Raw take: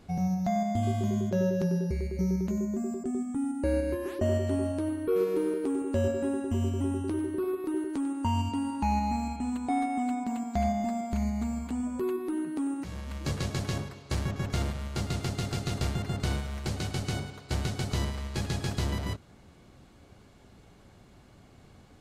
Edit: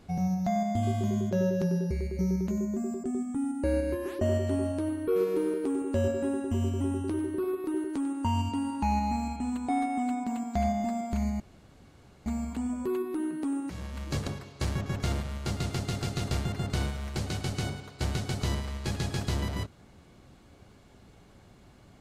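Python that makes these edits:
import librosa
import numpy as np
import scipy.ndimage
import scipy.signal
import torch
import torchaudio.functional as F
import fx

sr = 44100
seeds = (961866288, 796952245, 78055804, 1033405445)

y = fx.edit(x, sr, fx.insert_room_tone(at_s=11.4, length_s=0.86),
    fx.cut(start_s=13.41, length_s=0.36), tone=tone)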